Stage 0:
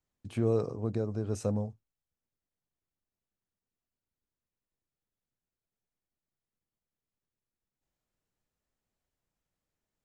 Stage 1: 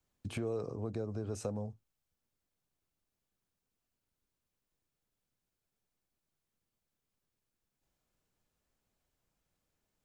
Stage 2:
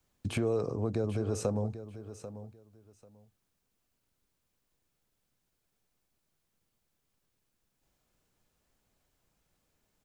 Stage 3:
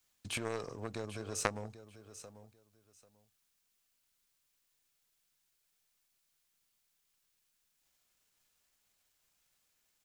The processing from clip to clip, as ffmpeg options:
ffmpeg -i in.wav -filter_complex "[0:a]bandreject=frequency=1900:width=21,acrossover=split=330|720|2500[link_01][link_02][link_03][link_04];[link_01]alimiter=level_in=5.5dB:limit=-24dB:level=0:latency=1,volume=-5.5dB[link_05];[link_05][link_02][link_03][link_04]amix=inputs=4:normalize=0,acompressor=threshold=-41dB:ratio=3,volume=4.5dB" out.wav
ffmpeg -i in.wav -af "aecho=1:1:791|1582:0.224|0.0425,volume=6.5dB" out.wav
ffmpeg -i in.wav -af "aeval=exprs='if(lt(val(0),0),0.708*val(0),val(0))':channel_layout=same,aeval=exprs='0.141*(cos(1*acos(clip(val(0)/0.141,-1,1)))-cos(1*PI/2))+0.0501*(cos(3*acos(clip(val(0)/0.141,-1,1)))-cos(3*PI/2))+0.0126*(cos(5*acos(clip(val(0)/0.141,-1,1)))-cos(5*PI/2))':channel_layout=same,tiltshelf=frequency=970:gain=-9,volume=5dB" out.wav

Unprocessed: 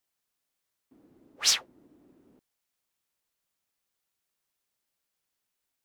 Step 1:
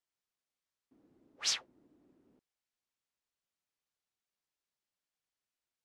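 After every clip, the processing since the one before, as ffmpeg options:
ffmpeg -i in.wav -af "lowpass=7500,volume=-8dB" out.wav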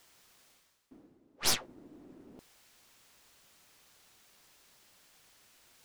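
ffmpeg -i in.wav -af "areverse,acompressor=mode=upward:threshold=-43dB:ratio=2.5,areverse,aeval=exprs='0.126*(cos(1*acos(clip(val(0)/0.126,-1,1)))-cos(1*PI/2))+0.0398*(cos(4*acos(clip(val(0)/0.126,-1,1)))-cos(4*PI/2))+0.0112*(cos(8*acos(clip(val(0)/0.126,-1,1)))-cos(8*PI/2))':channel_layout=same,volume=1.5dB" out.wav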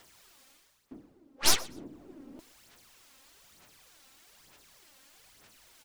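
ffmpeg -i in.wav -af "aphaser=in_gain=1:out_gain=1:delay=3.8:decay=0.55:speed=1.1:type=sinusoidal,aecho=1:1:123|246:0.0841|0.0177,volume=2.5dB" out.wav

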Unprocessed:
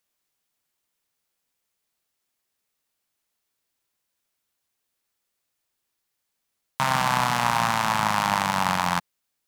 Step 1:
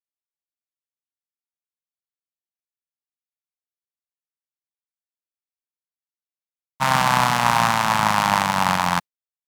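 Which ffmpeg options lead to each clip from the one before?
ffmpeg -i in.wav -af "agate=range=-33dB:threshold=-20dB:ratio=3:detection=peak,volume=5.5dB" out.wav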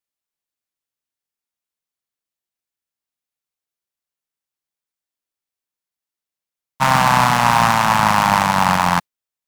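ffmpeg -i in.wav -af "acontrast=87,volume=-1dB" out.wav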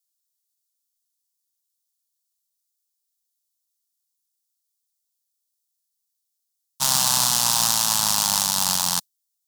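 ffmpeg -i in.wav -af "aexciter=amount=15.8:drive=3.8:freq=3400,volume=-15dB" out.wav

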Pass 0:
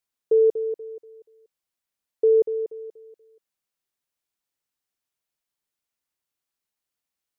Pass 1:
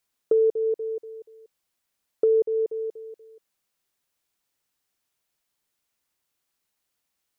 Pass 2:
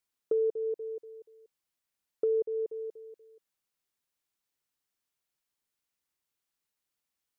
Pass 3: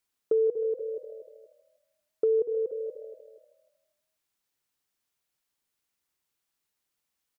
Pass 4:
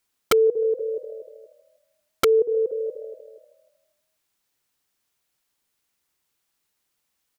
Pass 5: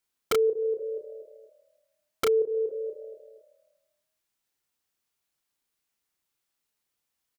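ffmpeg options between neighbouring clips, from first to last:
ffmpeg -i in.wav -af "acompressor=threshold=-30dB:ratio=2.5,volume=7dB" out.wav
ffmpeg -i in.wav -af "equalizer=frequency=650:width=3.6:gain=-2.5,volume=-7.5dB" out.wav
ffmpeg -i in.wav -filter_complex "[0:a]asplit=6[link_01][link_02][link_03][link_04][link_05][link_06];[link_02]adelay=157,afreqshift=38,volume=-17.5dB[link_07];[link_03]adelay=314,afreqshift=76,volume=-22.5dB[link_08];[link_04]adelay=471,afreqshift=114,volume=-27.6dB[link_09];[link_05]adelay=628,afreqshift=152,volume=-32.6dB[link_10];[link_06]adelay=785,afreqshift=190,volume=-37.6dB[link_11];[link_01][link_07][link_08][link_09][link_10][link_11]amix=inputs=6:normalize=0,volume=3.5dB" out.wav
ffmpeg -i in.wav -af "aeval=exprs='(mod(8.41*val(0)+1,2)-1)/8.41':channel_layout=same,volume=6.5dB" out.wav
ffmpeg -i in.wav -filter_complex "[0:a]asplit=2[link_01][link_02];[link_02]adelay=32,volume=-4.5dB[link_03];[link_01][link_03]amix=inputs=2:normalize=0,volume=-7.5dB" out.wav

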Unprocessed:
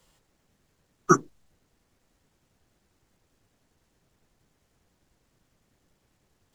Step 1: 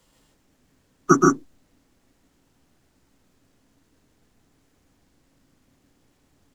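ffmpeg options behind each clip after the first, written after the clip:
ffmpeg -i in.wav -filter_complex "[0:a]equalizer=frequency=270:width=4.7:gain=10,asplit=2[link_01][link_02];[link_02]aecho=0:1:125.4|157.4:0.708|0.708[link_03];[link_01][link_03]amix=inputs=2:normalize=0,volume=1.5dB" out.wav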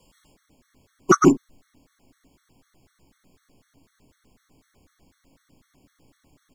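ffmpeg -i in.wav -af "acontrast=33,afftfilt=real='re*gt(sin(2*PI*4*pts/sr)*(1-2*mod(floor(b*sr/1024/1100),2)),0)':imag='im*gt(sin(2*PI*4*pts/sr)*(1-2*mod(floor(b*sr/1024/1100),2)),0)':win_size=1024:overlap=0.75" out.wav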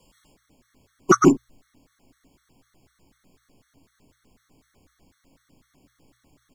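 ffmpeg -i in.wav -af "bandreject=frequency=60:width_type=h:width=6,bandreject=frequency=120:width_type=h:width=6" out.wav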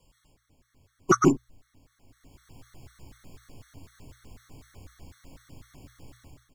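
ffmpeg -i in.wav -af "lowshelf=frequency=150:width_type=q:width=1.5:gain=6.5,dynaudnorm=framelen=520:gausssize=3:maxgain=15dB,volume=-6.5dB" out.wav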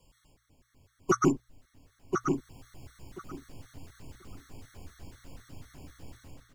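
ffmpeg -i in.wav -filter_complex "[0:a]alimiter=limit=-13.5dB:level=0:latency=1:release=333,asplit=2[link_01][link_02];[link_02]adelay=1035,lowpass=frequency=4600:poles=1,volume=-4.5dB,asplit=2[link_03][link_04];[link_04]adelay=1035,lowpass=frequency=4600:poles=1,volume=0.18,asplit=2[link_05][link_06];[link_06]adelay=1035,lowpass=frequency=4600:poles=1,volume=0.18[link_07];[link_03][link_05][link_07]amix=inputs=3:normalize=0[link_08];[link_01][link_08]amix=inputs=2:normalize=0" out.wav

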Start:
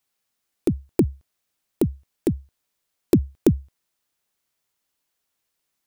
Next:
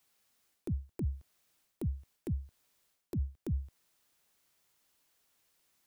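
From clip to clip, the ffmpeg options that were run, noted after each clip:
ffmpeg -i in.wav -filter_complex "[0:a]areverse,acompressor=threshold=-25dB:ratio=12,areverse,alimiter=level_in=6.5dB:limit=-24dB:level=0:latency=1:release=199,volume=-6.5dB,acrossover=split=170[link_01][link_02];[link_02]acompressor=threshold=-52dB:ratio=1.5[link_03];[link_01][link_03]amix=inputs=2:normalize=0,volume=4dB" out.wav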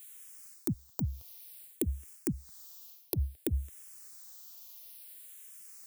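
ffmpeg -i in.wav -filter_complex "[0:a]crystalizer=i=3:c=0,bass=frequency=250:gain=-7,treble=frequency=4000:gain=2,asplit=2[link_01][link_02];[link_02]afreqshift=-0.57[link_03];[link_01][link_03]amix=inputs=2:normalize=1,volume=10dB" out.wav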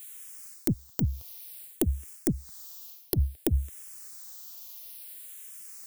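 ffmpeg -i in.wav -af "aeval=exprs='(tanh(8.91*val(0)+0.55)-tanh(0.55))/8.91':channel_layout=same,volume=8.5dB" out.wav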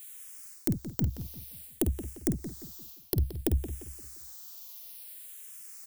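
ffmpeg -i in.wav -filter_complex "[0:a]asplit=2[link_01][link_02];[link_02]adelay=50,volume=-10.5dB[link_03];[link_01][link_03]amix=inputs=2:normalize=0,asplit=2[link_04][link_05];[link_05]adelay=174,lowpass=frequency=4000:poles=1,volume=-11dB,asplit=2[link_06][link_07];[link_07]adelay=174,lowpass=frequency=4000:poles=1,volume=0.39,asplit=2[link_08][link_09];[link_09]adelay=174,lowpass=frequency=4000:poles=1,volume=0.39,asplit=2[link_10][link_11];[link_11]adelay=174,lowpass=frequency=4000:poles=1,volume=0.39[link_12];[link_04][link_06][link_08][link_10][link_12]amix=inputs=5:normalize=0,volume=-2dB" out.wav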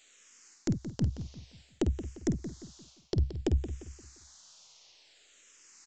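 ffmpeg -i in.wav -af "aresample=16000,aresample=44100" out.wav

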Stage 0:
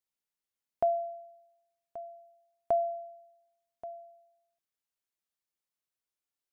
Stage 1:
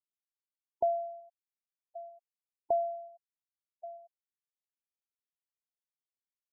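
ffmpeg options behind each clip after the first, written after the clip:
ffmpeg -i in.wav -af "afftfilt=real='re*gte(hypot(re,im),0.0316)':imag='im*gte(hypot(re,im),0.0316)':win_size=1024:overlap=0.75,volume=-1.5dB" out.wav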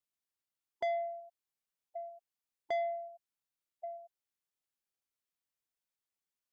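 ffmpeg -i in.wav -af "asoftclip=type=tanh:threshold=-32dB,volume=2dB" out.wav

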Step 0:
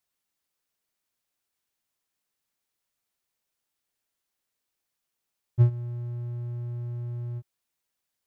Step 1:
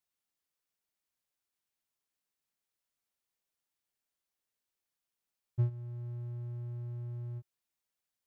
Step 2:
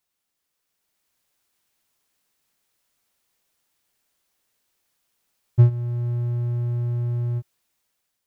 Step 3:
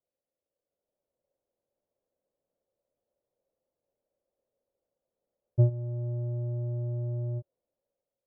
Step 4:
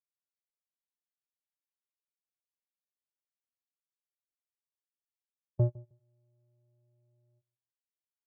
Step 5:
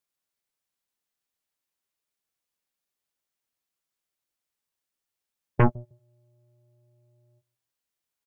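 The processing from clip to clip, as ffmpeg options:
ffmpeg -i in.wav -af "alimiter=limit=-14dB:level=0:latency=1:release=478,volume=-6.5dB" out.wav
ffmpeg -i in.wav -af "dynaudnorm=framelen=340:gausssize=5:maxgain=7dB,volume=8.5dB" out.wav
ffmpeg -i in.wav -af "lowpass=frequency=550:width_type=q:width=6.7,volume=-8dB" out.wav
ffmpeg -i in.wav -filter_complex "[0:a]agate=range=-35dB:threshold=-22dB:ratio=16:detection=peak,tiltshelf=frequency=760:gain=-5,asplit=2[link_01][link_02];[link_02]adelay=156,lowpass=frequency=860:poles=1,volume=-21dB,asplit=2[link_03][link_04];[link_04]adelay=156,lowpass=frequency=860:poles=1,volume=0.16[link_05];[link_01][link_03][link_05]amix=inputs=3:normalize=0" out.wav
ffmpeg -i in.wav -filter_complex "[0:a]aeval=exprs='0.141*(cos(1*acos(clip(val(0)/0.141,-1,1)))-cos(1*PI/2))+0.0398*(cos(6*acos(clip(val(0)/0.141,-1,1)))-cos(6*PI/2))+0.0501*(cos(7*acos(clip(val(0)/0.141,-1,1)))-cos(7*PI/2))':channel_layout=same,asplit=2[link_01][link_02];[link_02]adelay=13,volume=-14dB[link_03];[link_01][link_03]amix=inputs=2:normalize=0,volume=5.5dB" out.wav

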